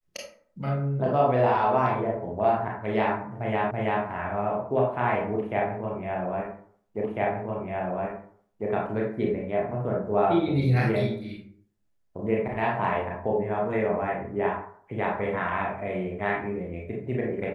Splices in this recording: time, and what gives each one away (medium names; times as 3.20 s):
3.71 s: repeat of the last 0.33 s
7.04 s: repeat of the last 1.65 s